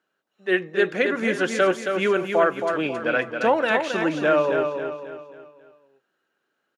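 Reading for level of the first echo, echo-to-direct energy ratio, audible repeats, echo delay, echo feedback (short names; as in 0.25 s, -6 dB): -6.0 dB, -5.0 dB, 4, 0.271 s, 42%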